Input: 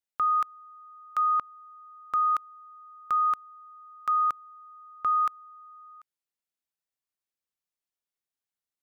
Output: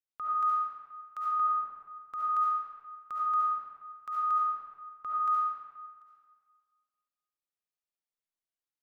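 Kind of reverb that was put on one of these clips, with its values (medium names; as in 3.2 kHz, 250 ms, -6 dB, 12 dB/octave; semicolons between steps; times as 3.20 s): algorithmic reverb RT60 1.7 s, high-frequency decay 0.65×, pre-delay 30 ms, DRR -6.5 dB; trim -12.5 dB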